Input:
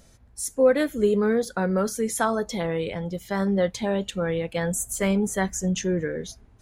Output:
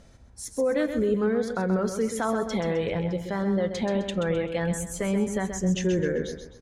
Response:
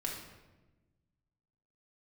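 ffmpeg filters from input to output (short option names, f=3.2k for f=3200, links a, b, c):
-filter_complex "[0:a]aemphasis=mode=reproduction:type=50fm,alimiter=limit=-19.5dB:level=0:latency=1:release=120,asplit=2[a][b];[b]aecho=0:1:130|260|390|520:0.398|0.147|0.0545|0.0202[c];[a][c]amix=inputs=2:normalize=0,volume=2dB"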